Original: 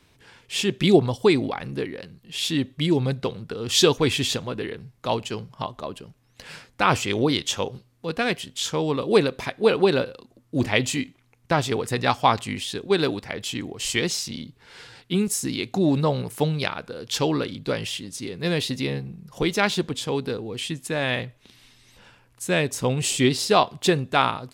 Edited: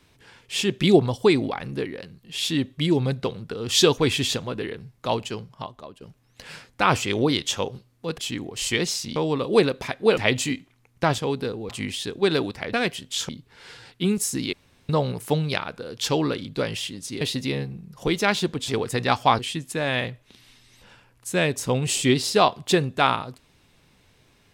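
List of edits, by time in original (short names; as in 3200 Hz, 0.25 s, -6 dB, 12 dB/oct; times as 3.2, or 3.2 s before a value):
5.2–6.01 fade out, to -12.5 dB
8.18–8.74 swap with 13.41–14.39
9.75–10.65 cut
11.66–12.37 swap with 20.03–20.54
15.63–15.99 room tone
18.31–18.56 cut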